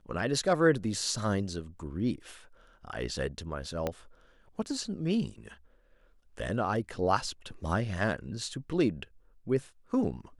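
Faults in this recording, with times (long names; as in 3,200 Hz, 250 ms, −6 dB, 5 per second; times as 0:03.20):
0:03.87: click −17 dBFS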